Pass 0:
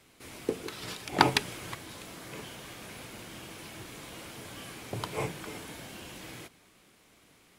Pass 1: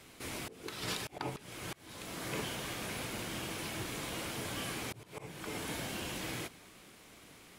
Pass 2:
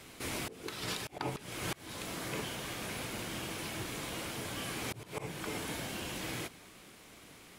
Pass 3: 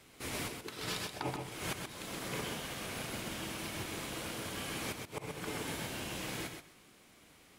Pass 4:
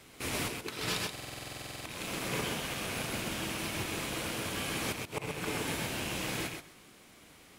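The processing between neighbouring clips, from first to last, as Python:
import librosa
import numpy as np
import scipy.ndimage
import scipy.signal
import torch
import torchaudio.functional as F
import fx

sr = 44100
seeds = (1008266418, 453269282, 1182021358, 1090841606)

y1 = fx.auto_swell(x, sr, attack_ms=540.0)
y1 = F.gain(torch.from_numpy(y1), 5.0).numpy()
y2 = fx.rider(y1, sr, range_db=10, speed_s=0.5)
y2 = F.gain(torch.from_numpy(y2), 1.0).numpy()
y3 = fx.echo_feedback(y2, sr, ms=129, feedback_pct=24, wet_db=-3.5)
y3 = fx.upward_expand(y3, sr, threshold_db=-49.0, expansion=1.5)
y4 = fx.rattle_buzz(y3, sr, strikes_db=-52.0, level_db=-37.0)
y4 = fx.buffer_glitch(y4, sr, at_s=(1.11,), block=2048, repeats=15)
y4 = F.gain(torch.from_numpy(y4), 4.5).numpy()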